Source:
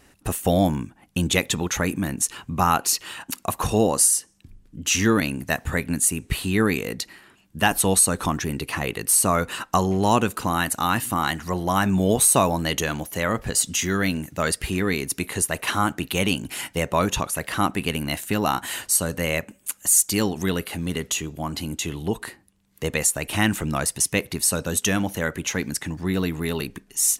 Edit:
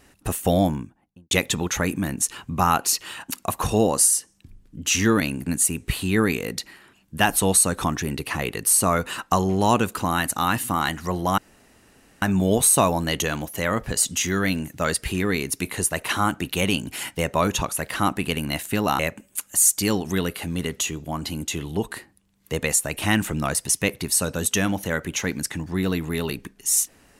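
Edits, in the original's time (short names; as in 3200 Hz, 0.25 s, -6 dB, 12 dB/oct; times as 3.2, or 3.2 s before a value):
0.52–1.31 studio fade out
5.46–5.88 cut
11.8 insert room tone 0.84 s
18.57–19.3 cut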